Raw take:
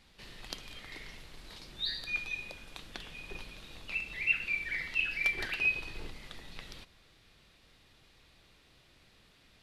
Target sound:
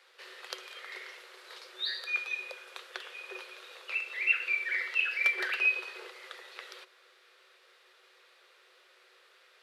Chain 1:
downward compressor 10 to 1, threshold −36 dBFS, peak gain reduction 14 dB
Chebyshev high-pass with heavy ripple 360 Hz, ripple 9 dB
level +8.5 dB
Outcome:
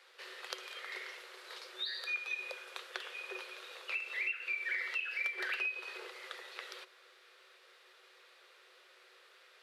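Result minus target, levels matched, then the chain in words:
downward compressor: peak gain reduction +14 dB
Chebyshev high-pass with heavy ripple 360 Hz, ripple 9 dB
level +8.5 dB

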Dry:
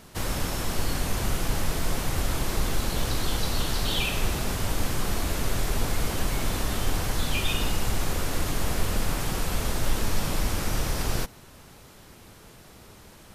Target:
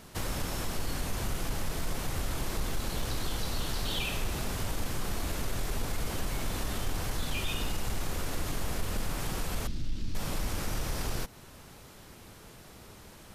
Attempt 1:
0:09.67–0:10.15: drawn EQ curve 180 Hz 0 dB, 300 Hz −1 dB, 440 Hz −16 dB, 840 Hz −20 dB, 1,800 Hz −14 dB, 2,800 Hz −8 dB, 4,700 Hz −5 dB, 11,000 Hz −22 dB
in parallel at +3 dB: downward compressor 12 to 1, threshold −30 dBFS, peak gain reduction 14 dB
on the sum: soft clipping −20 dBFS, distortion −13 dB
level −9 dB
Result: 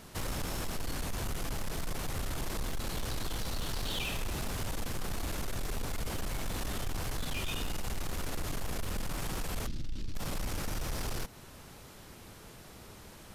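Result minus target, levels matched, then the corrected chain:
soft clipping: distortion +12 dB
0:09.67–0:10.15: drawn EQ curve 180 Hz 0 dB, 300 Hz −1 dB, 440 Hz −16 dB, 840 Hz −20 dB, 1,800 Hz −14 dB, 2,800 Hz −8 dB, 4,700 Hz −5 dB, 11,000 Hz −22 dB
in parallel at +3 dB: downward compressor 12 to 1, threshold −30 dBFS, peak gain reduction 14 dB
on the sum: soft clipping −11 dBFS, distortion −25 dB
level −9 dB

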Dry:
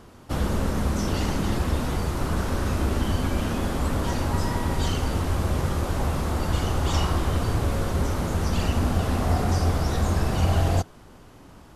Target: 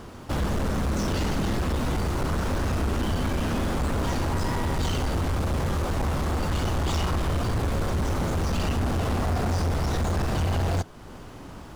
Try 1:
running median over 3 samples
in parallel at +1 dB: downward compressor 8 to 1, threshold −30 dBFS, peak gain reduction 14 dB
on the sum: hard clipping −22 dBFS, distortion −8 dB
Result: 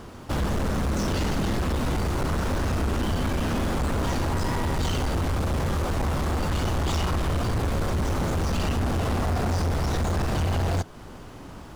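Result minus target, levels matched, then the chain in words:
downward compressor: peak gain reduction −5 dB
running median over 3 samples
in parallel at +1 dB: downward compressor 8 to 1, threshold −36 dBFS, peak gain reduction 19 dB
on the sum: hard clipping −22 dBFS, distortion −9 dB

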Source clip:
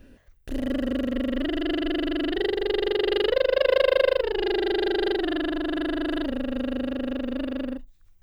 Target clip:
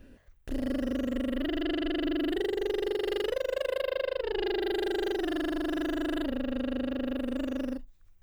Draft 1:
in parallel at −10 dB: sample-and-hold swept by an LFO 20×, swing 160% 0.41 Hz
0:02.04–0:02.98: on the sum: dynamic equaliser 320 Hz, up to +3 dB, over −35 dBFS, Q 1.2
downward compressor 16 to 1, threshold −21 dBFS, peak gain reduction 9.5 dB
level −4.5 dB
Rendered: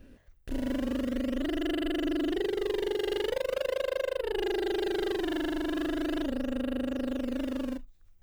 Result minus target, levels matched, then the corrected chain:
sample-and-hold swept by an LFO: distortion +11 dB
in parallel at −10 dB: sample-and-hold swept by an LFO 5×, swing 160% 0.41 Hz
0:02.04–0:02.98: on the sum: dynamic equaliser 320 Hz, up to +3 dB, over −35 dBFS, Q 1.2
downward compressor 16 to 1, threshold −21 dBFS, peak gain reduction 9.5 dB
level −4.5 dB

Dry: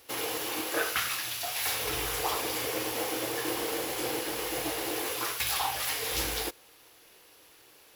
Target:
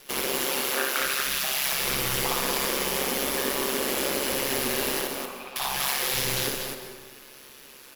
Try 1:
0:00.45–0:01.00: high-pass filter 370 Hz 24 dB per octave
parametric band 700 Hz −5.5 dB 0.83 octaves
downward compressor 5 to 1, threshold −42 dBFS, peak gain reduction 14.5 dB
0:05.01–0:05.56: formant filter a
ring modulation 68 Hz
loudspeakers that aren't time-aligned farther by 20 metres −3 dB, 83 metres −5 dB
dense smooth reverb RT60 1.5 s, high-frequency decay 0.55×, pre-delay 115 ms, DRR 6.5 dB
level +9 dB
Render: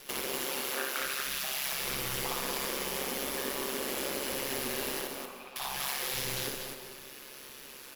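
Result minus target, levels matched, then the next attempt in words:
downward compressor: peak gain reduction +7.5 dB
0:00.45–0:01.00: high-pass filter 370 Hz 24 dB per octave
parametric band 700 Hz −5.5 dB 0.83 octaves
downward compressor 5 to 1, threshold −32.5 dBFS, peak gain reduction 7 dB
0:05.01–0:05.56: formant filter a
ring modulation 68 Hz
loudspeakers that aren't time-aligned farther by 20 metres −3 dB, 83 metres −5 dB
dense smooth reverb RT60 1.5 s, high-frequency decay 0.55×, pre-delay 115 ms, DRR 6.5 dB
level +9 dB

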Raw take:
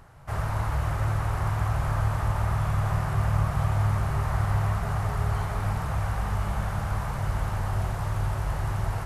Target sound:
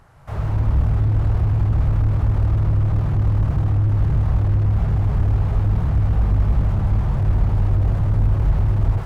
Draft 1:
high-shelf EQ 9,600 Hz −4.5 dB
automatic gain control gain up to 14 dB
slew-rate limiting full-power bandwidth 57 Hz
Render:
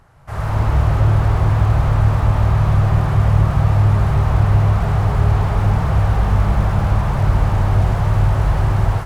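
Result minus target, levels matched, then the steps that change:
slew-rate limiting: distortion −11 dB
change: slew-rate limiting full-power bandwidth 18 Hz

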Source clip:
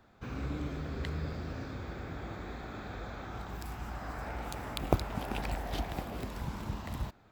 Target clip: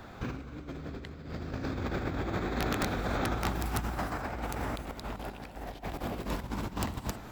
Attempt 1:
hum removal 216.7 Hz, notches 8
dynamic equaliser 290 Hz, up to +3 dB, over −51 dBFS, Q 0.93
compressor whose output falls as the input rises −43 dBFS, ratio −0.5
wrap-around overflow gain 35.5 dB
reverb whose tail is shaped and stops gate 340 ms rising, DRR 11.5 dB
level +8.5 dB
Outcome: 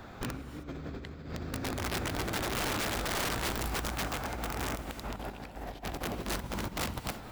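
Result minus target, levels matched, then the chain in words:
wrap-around overflow: distortion +16 dB
hum removal 216.7 Hz, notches 8
dynamic equaliser 290 Hz, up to +3 dB, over −51 dBFS, Q 0.93
compressor whose output falls as the input rises −43 dBFS, ratio −0.5
wrap-around overflow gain 29 dB
reverb whose tail is shaped and stops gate 340 ms rising, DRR 11.5 dB
level +8.5 dB

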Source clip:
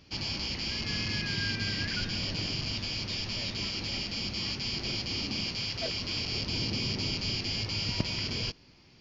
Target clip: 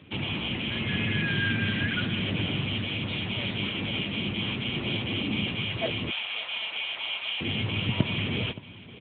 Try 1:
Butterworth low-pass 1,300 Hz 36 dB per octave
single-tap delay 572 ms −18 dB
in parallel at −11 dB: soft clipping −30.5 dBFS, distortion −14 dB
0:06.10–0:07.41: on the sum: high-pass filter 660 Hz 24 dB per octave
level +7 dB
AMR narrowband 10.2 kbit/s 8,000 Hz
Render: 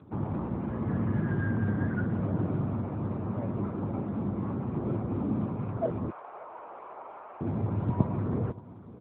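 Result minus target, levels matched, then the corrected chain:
1,000 Hz band +4.0 dB
single-tap delay 572 ms −18 dB
in parallel at −11 dB: soft clipping −30.5 dBFS, distortion −12 dB
0:06.10–0:07.41: on the sum: high-pass filter 660 Hz 24 dB per octave
level +7 dB
AMR narrowband 10.2 kbit/s 8,000 Hz

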